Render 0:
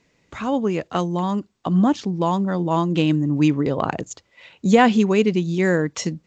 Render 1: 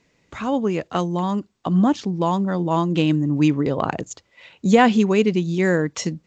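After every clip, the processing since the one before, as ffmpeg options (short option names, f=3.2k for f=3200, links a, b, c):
-af anull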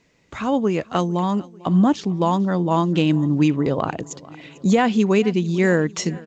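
-af "aecho=1:1:447|894|1341|1788:0.075|0.042|0.0235|0.0132,alimiter=limit=-8.5dB:level=0:latency=1:release=314,volume=1.5dB"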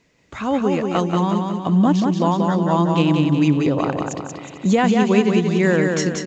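-af "aecho=1:1:183|366|549|732|915|1098:0.631|0.315|0.158|0.0789|0.0394|0.0197"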